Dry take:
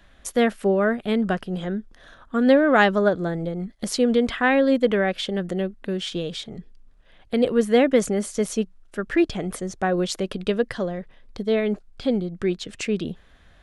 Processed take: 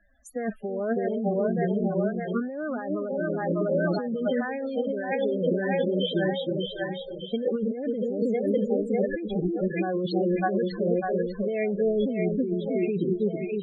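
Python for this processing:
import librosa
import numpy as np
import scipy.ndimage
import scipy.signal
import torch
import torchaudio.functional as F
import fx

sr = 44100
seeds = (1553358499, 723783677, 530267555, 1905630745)

y = fx.noise_reduce_blind(x, sr, reduce_db=9)
y = fx.hpss(y, sr, part='percussive', gain_db=-14)
y = fx.dynamic_eq(y, sr, hz=3700.0, q=1.0, threshold_db=-45.0, ratio=4.0, max_db=4)
y = fx.echo_split(y, sr, split_hz=530.0, low_ms=320, high_ms=598, feedback_pct=52, wet_db=-5.0)
y = fx.over_compress(y, sr, threshold_db=-27.0, ratio=-1.0)
y = fx.low_shelf(y, sr, hz=150.0, db=-8.5)
y = fx.spec_topn(y, sr, count=16)
y = F.gain(torch.from_numpy(y), 2.5).numpy()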